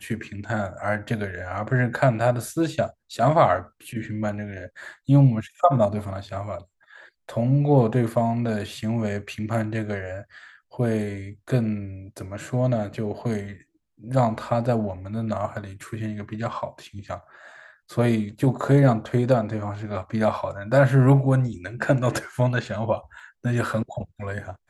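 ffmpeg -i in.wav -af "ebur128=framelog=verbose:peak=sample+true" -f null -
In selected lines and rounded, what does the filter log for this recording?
Integrated loudness:
  I:         -24.0 LUFS
  Threshold: -34.7 LUFS
Loudness range:
  LRA:         6.6 LU
  Threshold: -44.5 LUFS
  LRA low:   -28.5 LUFS
  LRA high:  -21.9 LUFS
Sample peak:
  Peak:       -4.0 dBFS
True peak:
  Peak:       -4.0 dBFS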